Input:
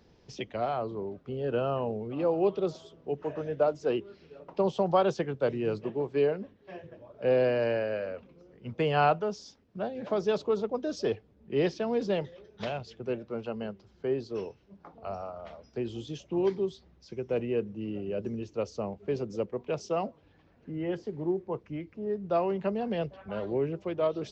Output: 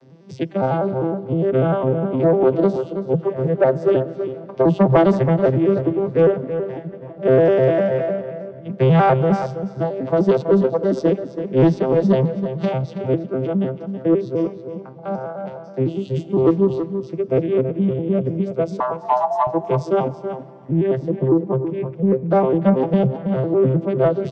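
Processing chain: vocoder on a broken chord major triad, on C3, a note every 101 ms; in parallel at -9.5 dB: sine folder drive 8 dB, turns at -13 dBFS; 18.80–19.47 s: on the sum: frequency shift +490 Hz; echo from a far wall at 56 m, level -9 dB; reverberation RT60 3.4 s, pre-delay 77 ms, DRR 18.5 dB; trim +7 dB

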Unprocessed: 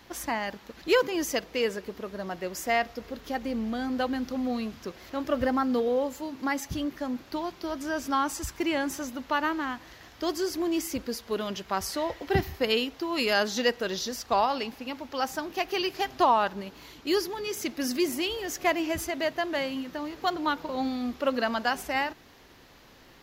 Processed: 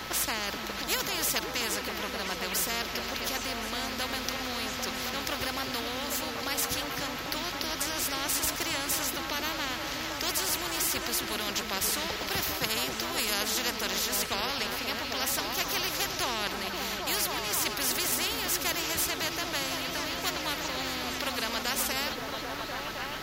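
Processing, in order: whistle 1.3 kHz -44 dBFS; repeats whose band climbs or falls 265 ms, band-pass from 190 Hz, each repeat 0.7 oct, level -1 dB; spectrum-flattening compressor 4:1

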